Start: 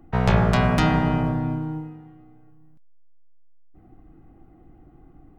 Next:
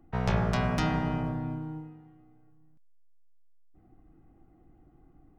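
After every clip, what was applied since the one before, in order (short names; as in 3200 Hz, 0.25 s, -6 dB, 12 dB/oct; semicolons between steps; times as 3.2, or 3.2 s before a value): dynamic EQ 5600 Hz, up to +6 dB, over -55 dBFS, Q 3.6; gain -8.5 dB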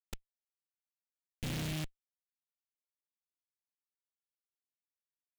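flipped gate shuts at -24 dBFS, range -37 dB; Schmitt trigger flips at -39.5 dBFS; noise-modulated delay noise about 2600 Hz, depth 0.24 ms; gain +10 dB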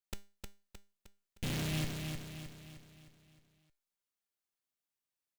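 resonator 200 Hz, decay 0.33 s, harmonics all, mix 60%; on a send: feedback echo 0.309 s, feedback 48%, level -5 dB; on the sum: gain +8 dB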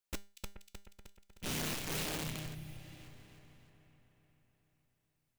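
split-band echo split 2500 Hz, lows 0.43 s, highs 0.24 s, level -13 dB; spectral repair 2.57–2.97, 220–9000 Hz after; wrapped overs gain 37.5 dB; gain +3.5 dB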